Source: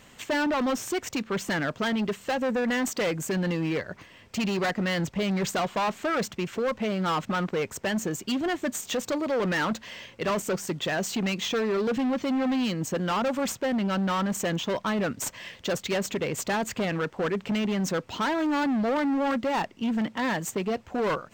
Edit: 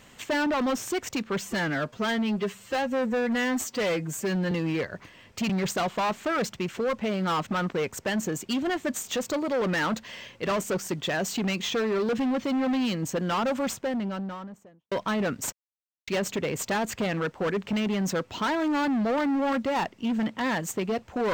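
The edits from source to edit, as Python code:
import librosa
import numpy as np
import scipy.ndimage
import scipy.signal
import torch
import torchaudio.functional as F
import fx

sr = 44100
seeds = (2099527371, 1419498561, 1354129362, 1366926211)

y = fx.studio_fade_out(x, sr, start_s=13.28, length_s=1.42)
y = fx.edit(y, sr, fx.stretch_span(start_s=1.41, length_s=2.07, factor=1.5),
    fx.cut(start_s=4.46, length_s=0.82),
    fx.silence(start_s=15.31, length_s=0.55), tone=tone)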